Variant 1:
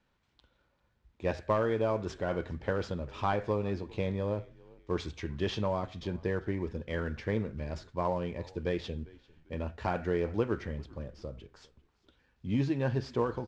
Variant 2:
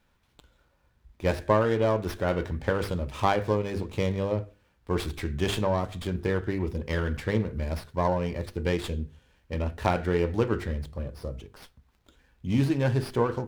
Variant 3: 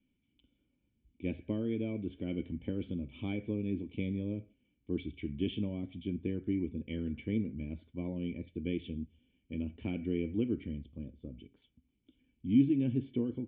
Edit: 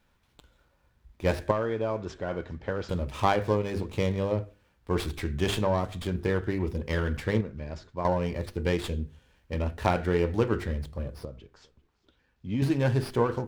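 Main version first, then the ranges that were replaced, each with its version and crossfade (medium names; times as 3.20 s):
2
1.51–2.89 s: from 1
7.41–8.05 s: from 1
11.25–12.62 s: from 1
not used: 3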